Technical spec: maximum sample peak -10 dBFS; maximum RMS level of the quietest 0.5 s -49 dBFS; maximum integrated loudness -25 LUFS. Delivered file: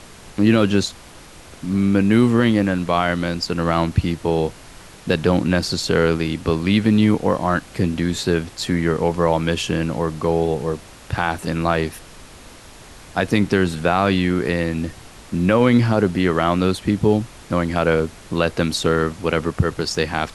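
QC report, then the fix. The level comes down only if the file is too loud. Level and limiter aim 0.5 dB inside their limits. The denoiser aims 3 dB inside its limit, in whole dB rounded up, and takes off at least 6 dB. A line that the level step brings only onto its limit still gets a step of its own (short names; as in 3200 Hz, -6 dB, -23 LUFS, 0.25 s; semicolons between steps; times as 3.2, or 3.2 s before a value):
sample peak -4.5 dBFS: fail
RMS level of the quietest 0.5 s -42 dBFS: fail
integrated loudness -19.5 LUFS: fail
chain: denoiser 6 dB, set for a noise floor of -42 dBFS; gain -6 dB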